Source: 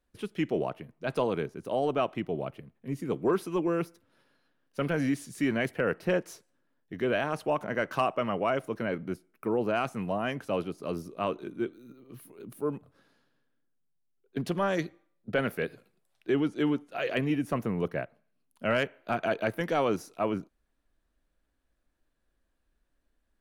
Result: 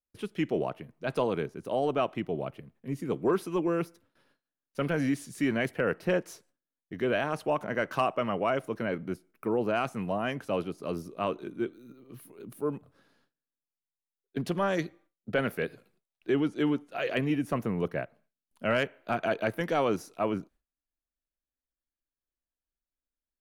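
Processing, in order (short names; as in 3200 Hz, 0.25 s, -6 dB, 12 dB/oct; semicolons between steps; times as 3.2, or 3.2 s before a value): gate with hold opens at -58 dBFS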